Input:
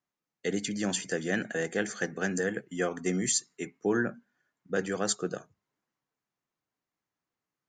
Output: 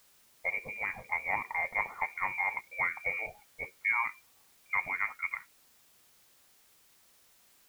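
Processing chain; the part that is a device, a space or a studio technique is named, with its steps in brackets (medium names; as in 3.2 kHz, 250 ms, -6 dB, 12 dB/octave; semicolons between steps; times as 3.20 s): scrambled radio voice (band-pass 350–3000 Hz; frequency inversion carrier 2.6 kHz; white noise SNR 27 dB)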